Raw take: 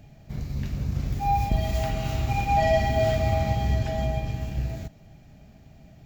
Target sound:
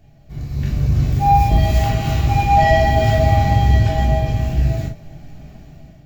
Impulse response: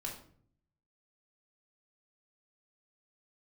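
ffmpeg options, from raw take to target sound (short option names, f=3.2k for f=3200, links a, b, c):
-filter_complex "[0:a]dynaudnorm=f=230:g=5:m=11dB[a];[1:a]atrim=start_sample=2205,atrim=end_sample=3087[b];[a][b]afir=irnorm=-1:irlink=0"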